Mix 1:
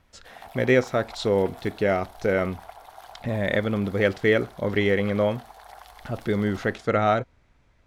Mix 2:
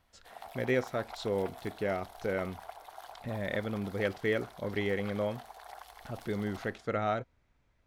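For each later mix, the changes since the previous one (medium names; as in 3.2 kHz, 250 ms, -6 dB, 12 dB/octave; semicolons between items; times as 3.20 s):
speech -10.0 dB; background: send -8.5 dB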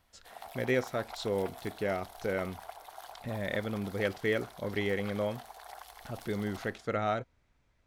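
master: add treble shelf 4.3 kHz +5 dB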